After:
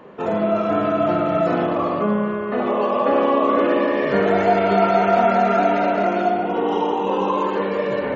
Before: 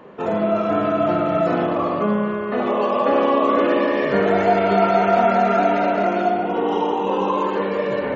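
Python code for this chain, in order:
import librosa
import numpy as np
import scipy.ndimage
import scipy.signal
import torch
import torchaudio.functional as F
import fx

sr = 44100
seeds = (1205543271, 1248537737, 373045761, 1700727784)

y = fx.high_shelf(x, sr, hz=4500.0, db=-7.0, at=(2.01, 4.07))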